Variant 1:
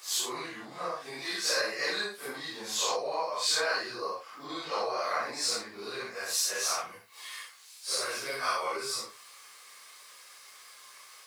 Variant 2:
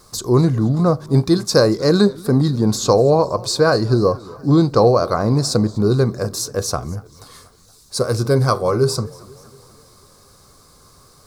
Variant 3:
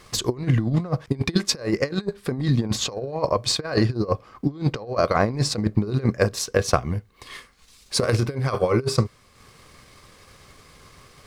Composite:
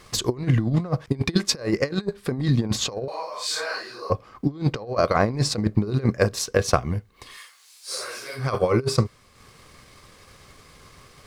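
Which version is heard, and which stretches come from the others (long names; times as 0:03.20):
3
0:03.08–0:04.10: punch in from 1
0:07.32–0:08.41: punch in from 1, crossfade 0.16 s
not used: 2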